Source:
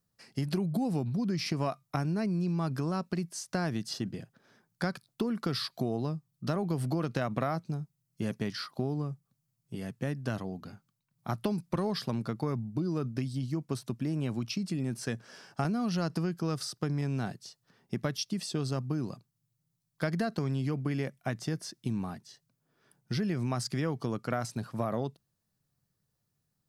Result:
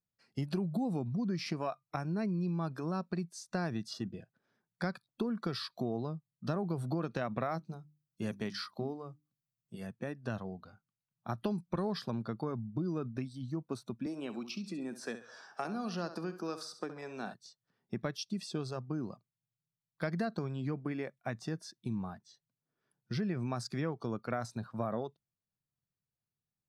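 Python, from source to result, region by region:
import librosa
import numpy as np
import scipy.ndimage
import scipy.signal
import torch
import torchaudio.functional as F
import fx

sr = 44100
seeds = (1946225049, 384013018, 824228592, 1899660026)

y = fx.chain(x, sr, fx.high_shelf(hz=3700.0, db=6.0),
    fx.hum_notches(base_hz=50, count=7), at=(7.51, 9.87))
y = fx.chain(y, sr, fx.highpass(hz=250.0, slope=12),
    fx.echo_feedback(ms=68, feedback_pct=40, wet_db=-11.5),
    fx.band_squash(depth_pct=40), at=(14.06, 17.34))
y = fx.noise_reduce_blind(y, sr, reduce_db=11)
y = fx.high_shelf(y, sr, hz=7500.0, db=-11.5)
y = y * 10.0 ** (-3.0 / 20.0)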